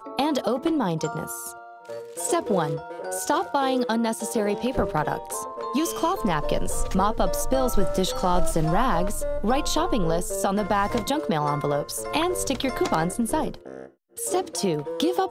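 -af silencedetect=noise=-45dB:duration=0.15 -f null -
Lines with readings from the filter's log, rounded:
silence_start: 13.89
silence_end: 14.17 | silence_duration: 0.28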